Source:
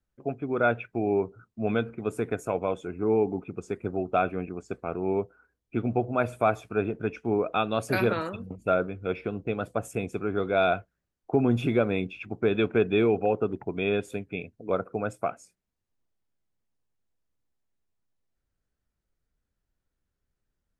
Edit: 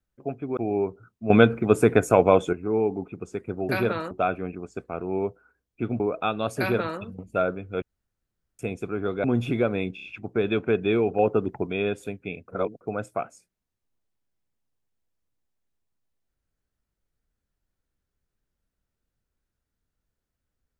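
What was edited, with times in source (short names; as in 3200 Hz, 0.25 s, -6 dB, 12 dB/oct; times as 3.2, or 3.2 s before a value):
0.57–0.93 cut
1.66–2.89 gain +11 dB
5.94–7.32 cut
7.9–8.32 copy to 4.05
9.14–9.91 room tone
10.56–11.4 cut
12.11 stutter 0.03 s, 4 plays
13.26–13.74 gain +4 dB
14.55–14.88 reverse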